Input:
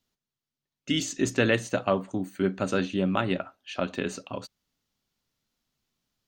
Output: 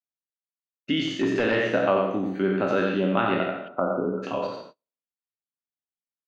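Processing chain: spectral trails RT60 0.64 s; HPF 110 Hz; echo 90 ms -4.5 dB; 3.68–4.23 spectral delete 1500–9800 Hz; in parallel at +2 dB: compressor, threshold -30 dBFS, peak gain reduction 14 dB; on the sum: low shelf 150 Hz -11 dB; 1.06–1.64 overloaded stage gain 16.5 dB; air absorption 300 m; echo 0.168 s -22.5 dB; gate -44 dBFS, range -33 dB

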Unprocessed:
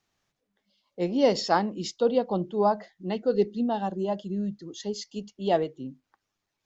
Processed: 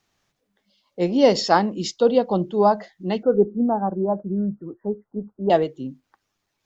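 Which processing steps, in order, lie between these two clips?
3.23–5.5 steep low-pass 1500 Hz 72 dB/oct; gain +6 dB

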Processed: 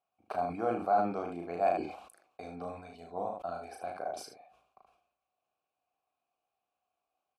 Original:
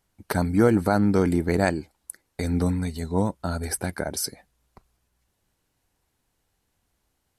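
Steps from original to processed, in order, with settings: vowel filter a; on a send: early reflections 35 ms -4 dB, 76 ms -8 dB; on the sum: sustainer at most 79 dB/s

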